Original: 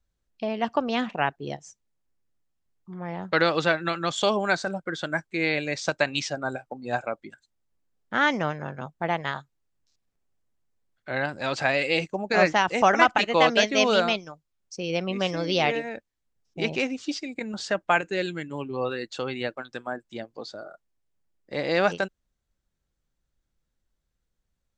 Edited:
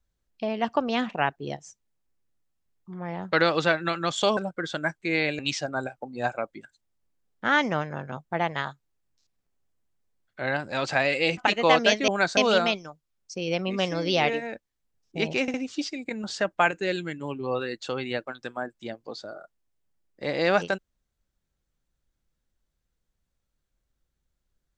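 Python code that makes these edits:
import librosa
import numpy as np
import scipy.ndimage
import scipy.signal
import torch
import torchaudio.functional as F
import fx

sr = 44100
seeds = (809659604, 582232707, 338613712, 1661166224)

y = fx.edit(x, sr, fx.move(start_s=4.37, length_s=0.29, to_s=13.79),
    fx.cut(start_s=5.68, length_s=0.4),
    fx.cut(start_s=12.06, length_s=1.02),
    fx.stutter(start_s=16.84, slice_s=0.06, count=3), tone=tone)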